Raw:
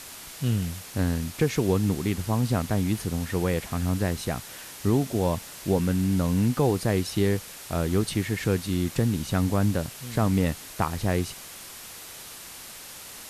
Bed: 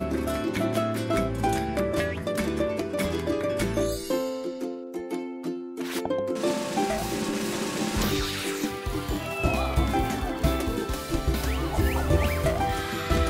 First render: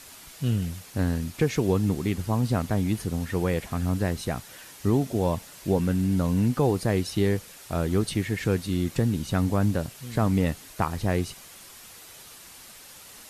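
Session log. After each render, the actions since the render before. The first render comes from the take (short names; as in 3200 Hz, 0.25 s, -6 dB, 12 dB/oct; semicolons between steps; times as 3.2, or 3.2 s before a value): denoiser 6 dB, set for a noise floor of -43 dBFS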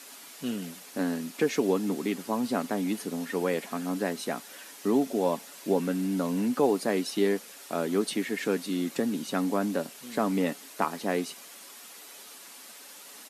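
Chebyshev high-pass 210 Hz, order 4; comb 7.1 ms, depth 31%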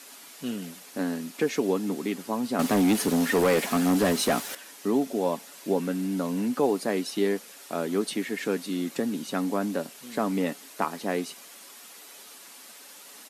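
2.59–4.55 sample leveller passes 3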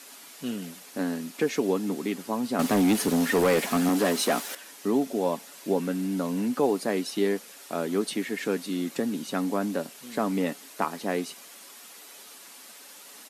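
3.89–4.63 HPF 220 Hz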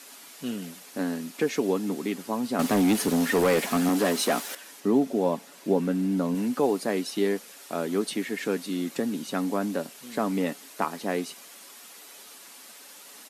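4.8–6.35 tilt -1.5 dB/oct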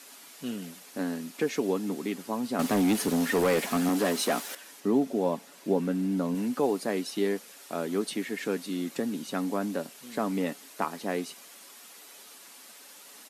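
gain -2.5 dB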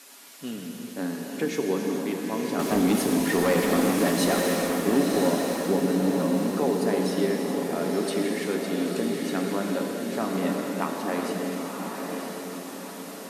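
diffused feedback echo 0.987 s, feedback 50%, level -4 dB; non-linear reverb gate 0.47 s flat, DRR 1.5 dB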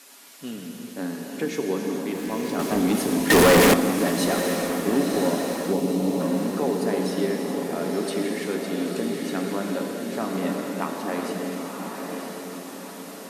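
2.15–2.66 zero-crossing step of -39.5 dBFS; 3.3–3.74 sample leveller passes 5; 5.73–6.21 bell 1600 Hz -12.5 dB 0.44 oct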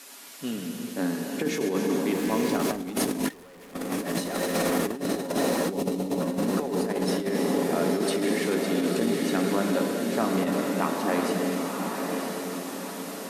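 negative-ratio compressor -26 dBFS, ratio -0.5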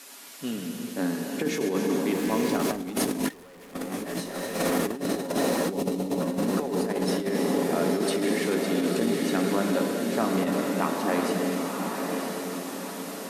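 3.84–4.59 detuned doubles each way 43 cents -> 30 cents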